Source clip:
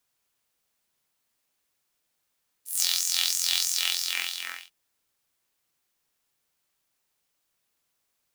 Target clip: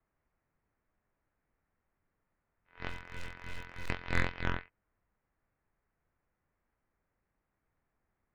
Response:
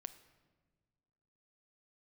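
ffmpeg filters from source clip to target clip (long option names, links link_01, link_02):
-filter_complex "[0:a]highpass=frequency=320:width_type=q:width=0.5412,highpass=frequency=320:width_type=q:width=1.307,lowpass=frequency=2400:width_type=q:width=0.5176,lowpass=frequency=2400:width_type=q:width=0.7071,lowpass=frequency=2400:width_type=q:width=1.932,afreqshift=-340,aeval=exprs='0.168*(cos(1*acos(clip(val(0)/0.168,-1,1)))-cos(1*PI/2))+0.0376*(cos(6*acos(clip(val(0)/0.168,-1,1)))-cos(6*PI/2))':channel_layout=same,aemphasis=mode=reproduction:type=bsi,asettb=1/sr,asplit=3[link_01][link_02][link_03];[link_01]atrim=end=2.894[link_04];[link_02]atrim=start=2.89:end=3.9,asetpts=PTS-STARTPTS,afade=type=in:duration=0.004:curve=qsin,afade=type=out:start_time=1.006:duration=0.004:curve=qsin,asoftclip=type=hard:threshold=-35.5dB[link_05];[link_03]atrim=start=3.896[link_06];[link_04][link_05]acrossfade=duration=0.004:curve1=hsin:curve2=qsin[link_07];[link_07][link_06]acrossfade=duration=0.004:curve1=qsin:curve2=hsin,volume=1dB"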